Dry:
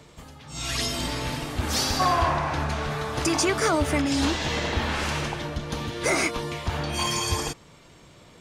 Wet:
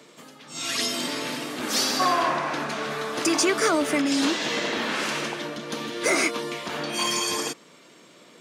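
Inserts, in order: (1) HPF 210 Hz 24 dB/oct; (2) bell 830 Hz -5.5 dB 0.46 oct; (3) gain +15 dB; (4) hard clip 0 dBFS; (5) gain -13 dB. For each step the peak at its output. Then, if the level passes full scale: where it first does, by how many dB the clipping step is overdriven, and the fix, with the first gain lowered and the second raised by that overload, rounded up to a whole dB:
-11.0, -11.0, +4.0, 0.0, -13.0 dBFS; step 3, 4.0 dB; step 3 +11 dB, step 5 -9 dB

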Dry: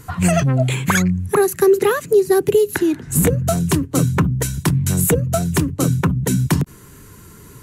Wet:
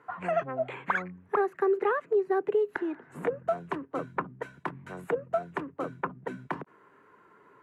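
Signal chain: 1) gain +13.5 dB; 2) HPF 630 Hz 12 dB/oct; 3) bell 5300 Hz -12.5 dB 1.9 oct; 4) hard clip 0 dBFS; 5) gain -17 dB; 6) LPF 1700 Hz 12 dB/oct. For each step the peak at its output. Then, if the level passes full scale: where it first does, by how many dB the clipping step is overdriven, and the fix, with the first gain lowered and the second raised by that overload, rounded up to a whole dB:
+8.0, +7.5, +5.0, 0.0, -17.0, -16.5 dBFS; step 1, 5.0 dB; step 1 +8.5 dB, step 5 -12 dB

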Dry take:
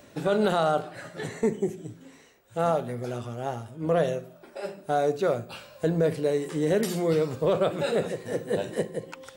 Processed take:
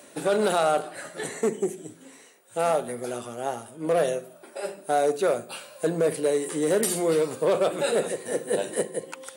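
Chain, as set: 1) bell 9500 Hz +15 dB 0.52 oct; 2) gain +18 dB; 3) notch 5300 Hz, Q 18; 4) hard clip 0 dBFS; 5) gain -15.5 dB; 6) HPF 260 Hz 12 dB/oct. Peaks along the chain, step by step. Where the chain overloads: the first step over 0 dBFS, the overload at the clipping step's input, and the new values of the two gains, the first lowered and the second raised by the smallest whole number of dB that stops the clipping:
-11.5, +6.5, +6.5, 0.0, -15.5, -11.5 dBFS; step 2, 6.5 dB; step 2 +11 dB, step 5 -8.5 dB

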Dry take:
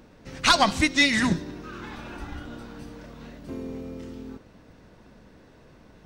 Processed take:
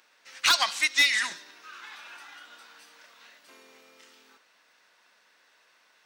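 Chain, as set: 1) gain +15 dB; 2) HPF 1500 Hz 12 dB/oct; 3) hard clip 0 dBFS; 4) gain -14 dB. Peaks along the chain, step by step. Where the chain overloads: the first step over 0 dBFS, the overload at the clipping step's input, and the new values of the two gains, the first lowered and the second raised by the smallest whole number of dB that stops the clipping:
+11.0, +8.5, 0.0, -14.0 dBFS; step 1, 8.5 dB; step 1 +6 dB, step 4 -5 dB

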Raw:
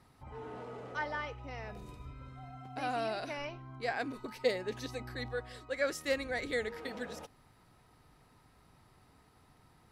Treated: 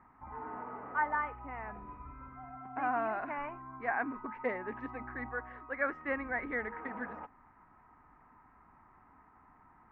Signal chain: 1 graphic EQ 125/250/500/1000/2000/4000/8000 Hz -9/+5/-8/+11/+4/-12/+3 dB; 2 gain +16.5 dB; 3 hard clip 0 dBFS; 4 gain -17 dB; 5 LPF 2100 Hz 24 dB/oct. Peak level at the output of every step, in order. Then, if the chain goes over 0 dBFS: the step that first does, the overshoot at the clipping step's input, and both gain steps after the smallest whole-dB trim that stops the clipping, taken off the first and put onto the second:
-18.5, -2.0, -2.0, -19.0, -19.0 dBFS; no overload

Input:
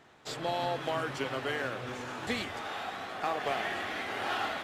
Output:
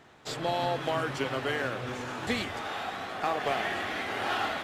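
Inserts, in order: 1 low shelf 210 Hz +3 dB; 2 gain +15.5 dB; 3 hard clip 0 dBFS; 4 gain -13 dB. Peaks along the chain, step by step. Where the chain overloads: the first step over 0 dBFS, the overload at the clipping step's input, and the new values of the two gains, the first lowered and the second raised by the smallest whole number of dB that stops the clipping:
-20.5, -5.0, -5.0, -18.0 dBFS; no overload

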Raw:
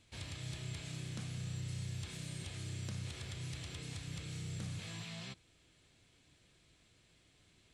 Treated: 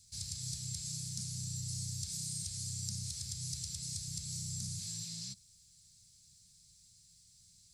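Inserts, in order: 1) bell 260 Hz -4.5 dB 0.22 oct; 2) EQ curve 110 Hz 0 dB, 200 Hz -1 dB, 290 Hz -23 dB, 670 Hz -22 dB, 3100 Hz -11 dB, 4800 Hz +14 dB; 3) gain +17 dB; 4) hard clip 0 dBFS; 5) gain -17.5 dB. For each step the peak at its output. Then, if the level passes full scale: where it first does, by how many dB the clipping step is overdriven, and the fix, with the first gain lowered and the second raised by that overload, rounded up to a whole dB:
-30.5, -19.5, -2.5, -2.5, -20.0 dBFS; no overload

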